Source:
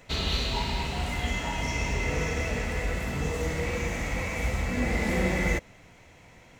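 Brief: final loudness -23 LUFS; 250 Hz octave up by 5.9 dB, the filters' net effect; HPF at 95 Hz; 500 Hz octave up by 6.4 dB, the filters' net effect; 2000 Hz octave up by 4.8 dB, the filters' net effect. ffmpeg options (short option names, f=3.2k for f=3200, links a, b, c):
-af "highpass=95,equalizer=f=250:t=o:g=6.5,equalizer=f=500:t=o:g=5.5,equalizer=f=2k:t=o:g=5,volume=2.5dB"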